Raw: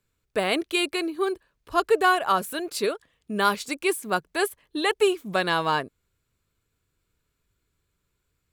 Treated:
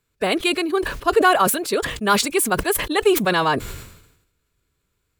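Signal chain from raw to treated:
phase-vocoder stretch with locked phases 0.61×
level that may fall only so fast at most 66 dB per second
level +5 dB

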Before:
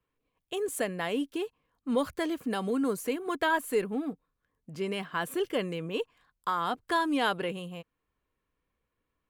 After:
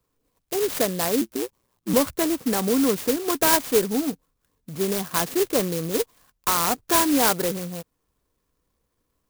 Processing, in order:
0:01.21–0:01.94: ring modulation 61 Hz
converter with an unsteady clock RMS 0.13 ms
level +8 dB

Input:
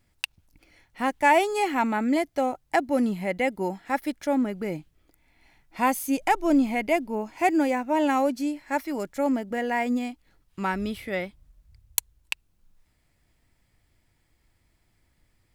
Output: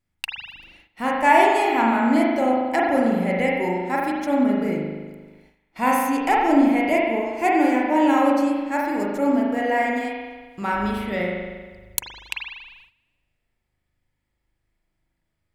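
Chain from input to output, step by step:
spring reverb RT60 1.4 s, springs 39 ms, chirp 60 ms, DRR −3.5 dB
noise gate −50 dBFS, range −13 dB

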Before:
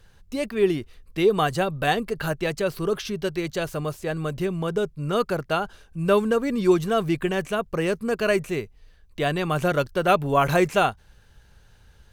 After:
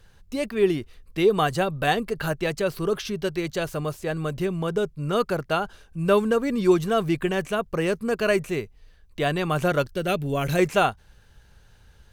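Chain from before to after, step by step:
0:09.93–0:10.59: parametric band 1,000 Hz −13.5 dB 1.3 octaves

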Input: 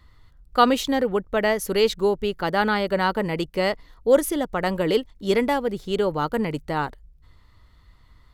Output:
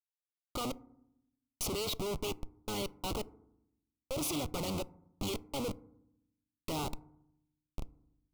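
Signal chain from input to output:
sub-octave generator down 1 octave, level −2 dB
meter weighting curve D
brickwall limiter −11.5 dBFS, peak gain reduction 12 dB
downward compressor 2 to 1, threshold −40 dBFS, peak gain reduction 13 dB
gate pattern ".x.x.....xxxx." 84 BPM −24 dB
comparator with hysteresis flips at −44.5 dBFS
Butterworth band-reject 1,700 Hz, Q 1.6
feedback delay network reverb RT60 0.77 s, low-frequency decay 1.5×, high-frequency decay 0.3×, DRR 17.5 dB
level +5 dB

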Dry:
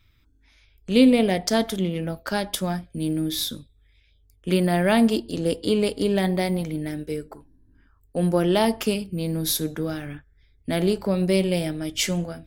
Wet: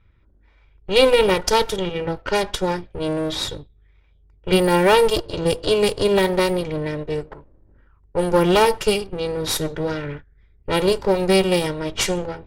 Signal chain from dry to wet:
lower of the sound and its delayed copy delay 2.1 ms
low-pass that shuts in the quiet parts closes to 1,600 Hz, open at −20 dBFS
level +5.5 dB

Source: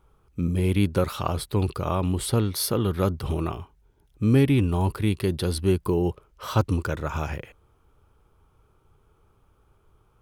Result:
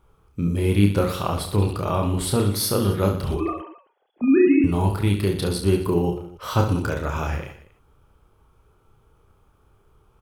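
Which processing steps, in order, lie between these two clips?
0:03.34–0:04.64: three sine waves on the formant tracks
reverse bouncing-ball delay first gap 30 ms, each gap 1.3×, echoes 5
level +1 dB

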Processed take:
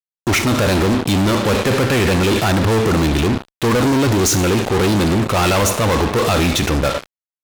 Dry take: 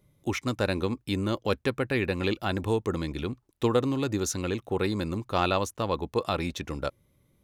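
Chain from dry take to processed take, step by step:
four-comb reverb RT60 0.73 s, combs from 28 ms, DRR 14 dB
transient designer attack −4 dB, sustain +5 dB
fuzz pedal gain 41 dB, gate −42 dBFS

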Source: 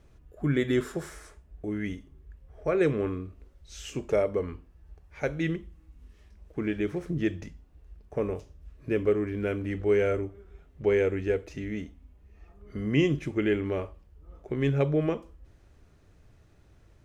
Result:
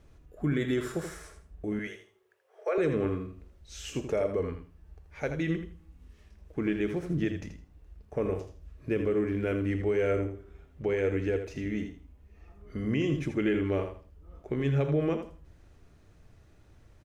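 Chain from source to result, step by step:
0:01.79–0:02.78: Butterworth high-pass 360 Hz 96 dB per octave
brickwall limiter −20 dBFS, peak gain reduction 8.5 dB
repeating echo 81 ms, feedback 22%, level −8.5 dB
on a send at −18 dB: convolution reverb RT60 0.45 s, pre-delay 4 ms

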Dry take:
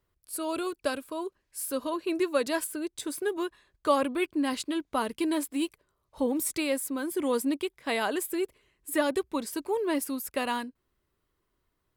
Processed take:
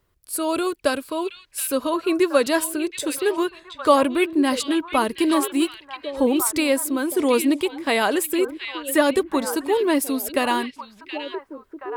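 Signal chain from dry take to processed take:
echo through a band-pass that steps 724 ms, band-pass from 2,900 Hz, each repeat −1.4 octaves, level −5 dB
level +8.5 dB

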